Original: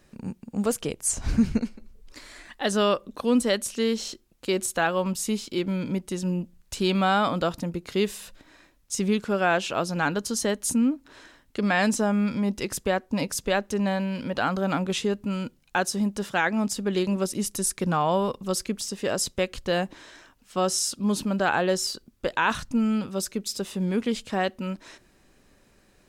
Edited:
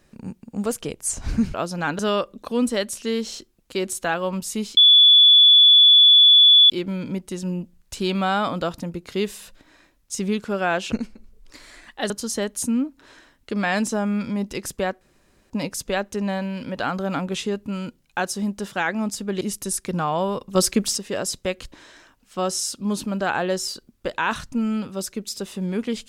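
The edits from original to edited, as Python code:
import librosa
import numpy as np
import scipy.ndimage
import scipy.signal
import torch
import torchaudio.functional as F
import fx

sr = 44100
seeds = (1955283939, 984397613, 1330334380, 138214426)

y = fx.edit(x, sr, fx.swap(start_s=1.54, length_s=1.18, other_s=9.72, other_length_s=0.45),
    fx.insert_tone(at_s=5.5, length_s=1.93, hz=3440.0, db=-8.5),
    fx.insert_room_tone(at_s=13.08, length_s=0.49),
    fx.cut(start_s=16.99, length_s=0.35),
    fx.clip_gain(start_s=18.48, length_s=0.43, db=8.5),
    fx.cut(start_s=19.65, length_s=0.26), tone=tone)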